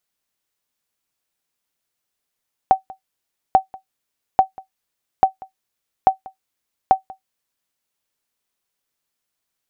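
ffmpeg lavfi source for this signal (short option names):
-f lavfi -i "aevalsrc='0.75*(sin(2*PI*764*mod(t,0.84))*exp(-6.91*mod(t,0.84)/0.12)+0.0668*sin(2*PI*764*max(mod(t,0.84)-0.19,0))*exp(-6.91*max(mod(t,0.84)-0.19,0)/0.12))':d=5.04:s=44100"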